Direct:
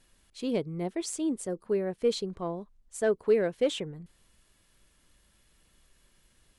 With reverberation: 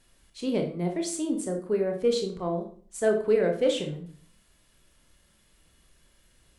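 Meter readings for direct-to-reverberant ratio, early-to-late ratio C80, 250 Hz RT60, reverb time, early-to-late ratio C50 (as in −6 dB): 3.0 dB, 13.0 dB, 0.65 s, 0.45 s, 8.0 dB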